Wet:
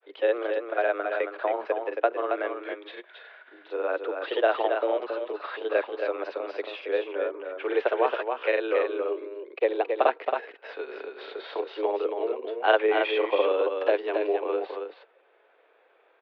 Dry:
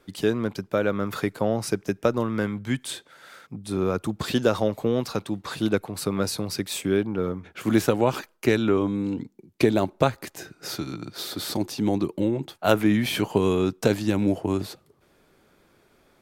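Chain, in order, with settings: grains, spray 38 ms, pitch spread up and down by 0 st; mistuned SSB +110 Hz 290–3100 Hz; echo 0.273 s -5.5 dB

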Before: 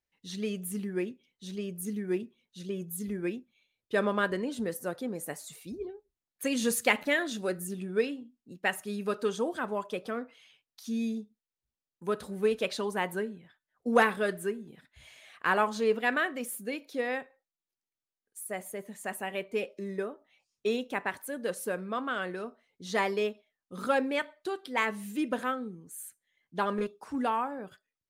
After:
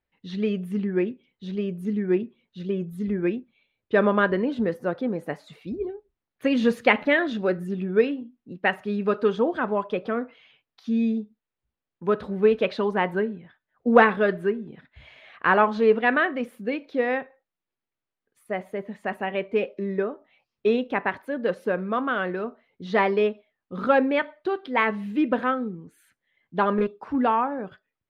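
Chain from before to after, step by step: air absorption 340 m; gain +9 dB

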